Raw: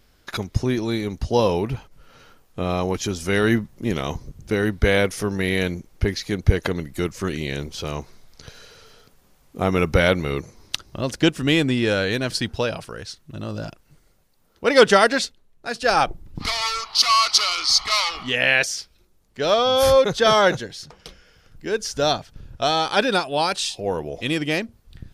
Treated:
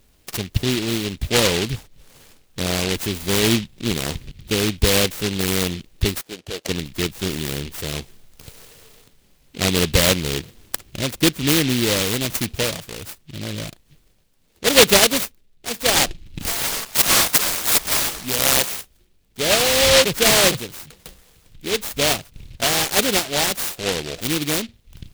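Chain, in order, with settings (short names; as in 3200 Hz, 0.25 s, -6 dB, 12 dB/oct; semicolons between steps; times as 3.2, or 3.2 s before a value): 6.21–6.69 band-pass 700 Hz, Q 2; noise-modulated delay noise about 3000 Hz, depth 0.26 ms; gain +1 dB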